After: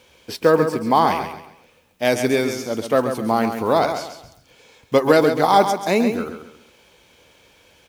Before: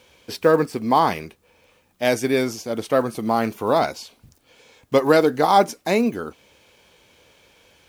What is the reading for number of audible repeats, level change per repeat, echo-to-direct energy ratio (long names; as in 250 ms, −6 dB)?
3, −10.0 dB, −7.5 dB